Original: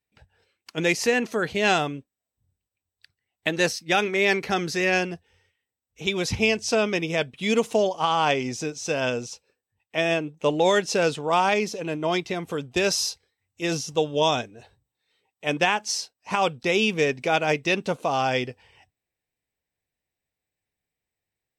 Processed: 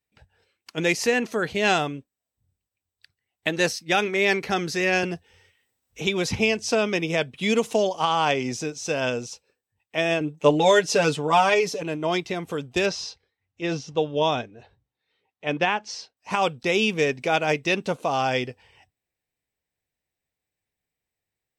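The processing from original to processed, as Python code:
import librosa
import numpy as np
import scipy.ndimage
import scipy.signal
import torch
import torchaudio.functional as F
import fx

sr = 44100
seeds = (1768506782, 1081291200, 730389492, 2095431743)

y = fx.band_squash(x, sr, depth_pct=40, at=(5.03, 8.59))
y = fx.comb(y, sr, ms=6.9, depth=0.85, at=(10.2, 11.83))
y = fx.air_absorb(y, sr, metres=150.0, at=(12.86, 16.17))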